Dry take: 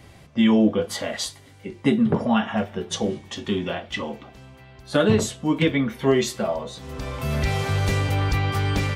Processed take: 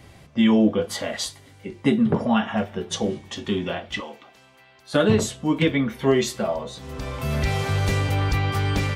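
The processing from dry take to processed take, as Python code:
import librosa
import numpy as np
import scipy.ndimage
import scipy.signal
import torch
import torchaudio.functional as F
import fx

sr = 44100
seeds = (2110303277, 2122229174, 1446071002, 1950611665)

y = fx.highpass(x, sr, hz=890.0, slope=6, at=(4.0, 4.94))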